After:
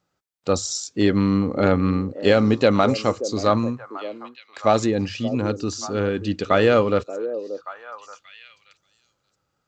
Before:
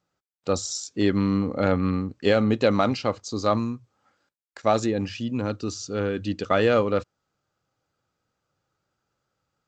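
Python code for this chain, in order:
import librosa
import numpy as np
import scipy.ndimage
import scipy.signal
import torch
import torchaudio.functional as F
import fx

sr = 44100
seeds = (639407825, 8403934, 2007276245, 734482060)

y = fx.echo_stepped(x, sr, ms=580, hz=420.0, octaves=1.4, feedback_pct=70, wet_db=-9.0)
y = F.gain(torch.from_numpy(y), 3.5).numpy()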